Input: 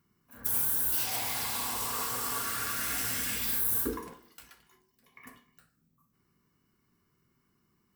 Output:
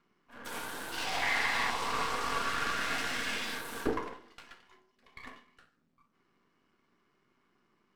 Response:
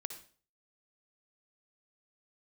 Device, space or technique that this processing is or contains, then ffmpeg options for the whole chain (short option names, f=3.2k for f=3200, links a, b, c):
crystal radio: -filter_complex "[0:a]highpass=300,lowpass=3.4k,aeval=exprs='if(lt(val(0),0),0.251*val(0),val(0))':c=same,asettb=1/sr,asplit=3[a][b][c];[a]atrim=end=1.224[d];[b]atrim=start=1.22:end=1.7,asetpts=PTS-STARTPTS,afade=t=in:d=0.004:c=qsin,afade=t=out:st=0.476:d=0.004:c=qsin,equalizer=f=1.9k:w=3.4:g=13[e];[c]atrim=start=1.696[f];[d][e]acrossfade=d=0.004:c1=hsin:c2=qsin[g];[g][f]acrossfade=d=0.004:c1=qsin:c2=hsin,volume=8.5dB"